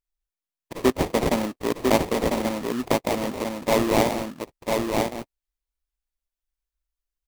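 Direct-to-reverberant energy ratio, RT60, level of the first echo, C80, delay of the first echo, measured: no reverb audible, no reverb audible, −3.5 dB, no reverb audible, 999 ms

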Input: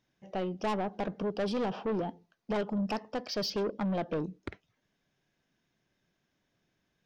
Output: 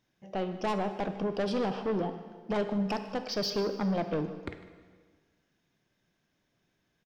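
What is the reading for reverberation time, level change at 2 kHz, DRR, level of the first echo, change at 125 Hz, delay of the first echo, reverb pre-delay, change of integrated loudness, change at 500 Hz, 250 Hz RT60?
1.6 s, +1.5 dB, 8.0 dB, −18.5 dB, +2.0 dB, 152 ms, 6 ms, +1.5 dB, +1.5 dB, 1.7 s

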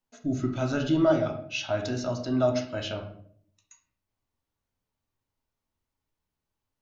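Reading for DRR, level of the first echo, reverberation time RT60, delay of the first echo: 2.0 dB, no echo audible, 0.60 s, no echo audible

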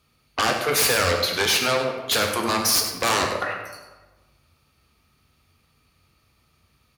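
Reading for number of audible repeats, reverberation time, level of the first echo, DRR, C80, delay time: 1, 1.2 s, −11.0 dB, 1.5 dB, 6.0 dB, 100 ms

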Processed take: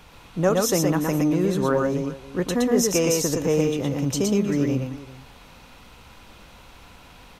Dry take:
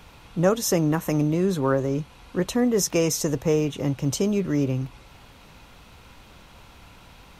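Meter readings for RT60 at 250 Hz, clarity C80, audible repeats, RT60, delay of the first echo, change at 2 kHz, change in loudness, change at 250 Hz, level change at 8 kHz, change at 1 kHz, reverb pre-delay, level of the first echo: no reverb audible, no reverb audible, 2, no reverb audible, 117 ms, +2.0 dB, +1.5 dB, +1.5 dB, +2.0 dB, +2.0 dB, no reverb audible, −2.5 dB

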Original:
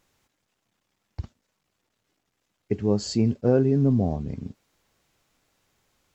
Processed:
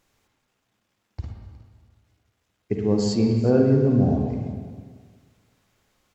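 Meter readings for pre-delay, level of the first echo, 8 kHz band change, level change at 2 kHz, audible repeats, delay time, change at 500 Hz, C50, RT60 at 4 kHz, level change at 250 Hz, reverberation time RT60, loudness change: 39 ms, −18.0 dB, can't be measured, +2.5 dB, 1, 364 ms, +2.5 dB, 1.5 dB, 1.6 s, +3.0 dB, 1.6 s, +2.5 dB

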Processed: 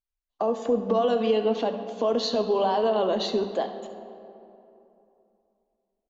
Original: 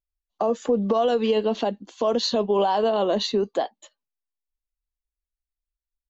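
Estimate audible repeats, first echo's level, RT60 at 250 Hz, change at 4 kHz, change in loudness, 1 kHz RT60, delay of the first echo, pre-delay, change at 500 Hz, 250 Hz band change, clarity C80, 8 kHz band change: 1, −14.5 dB, 3.0 s, −3.5 dB, −2.0 dB, 2.8 s, 71 ms, 3 ms, −1.5 dB, −2.5 dB, 10.0 dB, can't be measured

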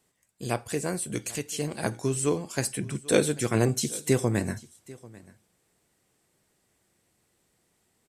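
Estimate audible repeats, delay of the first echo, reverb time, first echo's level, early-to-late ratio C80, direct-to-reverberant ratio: 1, 791 ms, no reverb audible, −21.5 dB, no reverb audible, no reverb audible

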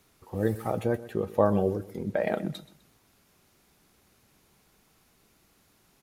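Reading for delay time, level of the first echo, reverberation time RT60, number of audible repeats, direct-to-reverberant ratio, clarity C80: 127 ms, −17.0 dB, no reverb audible, 2, no reverb audible, no reverb audible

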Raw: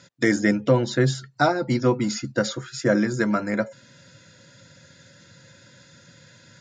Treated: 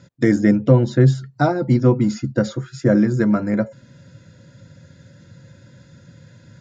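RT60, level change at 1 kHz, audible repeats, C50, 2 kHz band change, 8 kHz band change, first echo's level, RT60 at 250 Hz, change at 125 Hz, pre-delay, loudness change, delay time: no reverb audible, −0.5 dB, no echo audible, no reverb audible, −3.0 dB, can't be measured, no echo audible, no reverb audible, +9.0 dB, no reverb audible, +5.0 dB, no echo audible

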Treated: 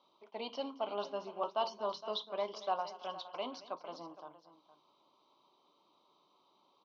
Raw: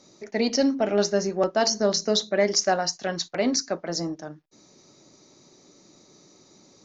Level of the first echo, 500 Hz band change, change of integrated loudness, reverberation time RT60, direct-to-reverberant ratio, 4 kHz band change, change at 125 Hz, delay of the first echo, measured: −17.5 dB, −15.0 dB, −15.5 dB, no reverb audible, no reverb audible, −17.0 dB, −26.0 dB, 225 ms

